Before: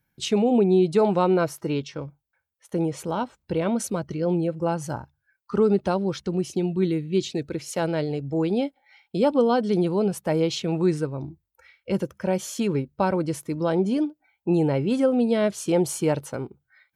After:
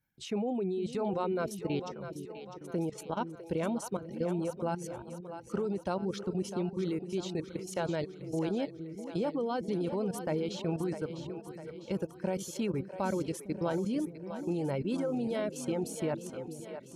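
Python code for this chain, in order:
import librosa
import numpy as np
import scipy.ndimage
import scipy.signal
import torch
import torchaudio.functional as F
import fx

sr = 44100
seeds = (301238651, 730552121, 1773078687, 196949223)

y = fx.level_steps(x, sr, step_db=13)
y = fx.dereverb_blind(y, sr, rt60_s=0.72)
y = fx.echo_split(y, sr, split_hz=400.0, low_ms=456, high_ms=652, feedback_pct=52, wet_db=-9.5)
y = y * librosa.db_to_amplitude(-4.5)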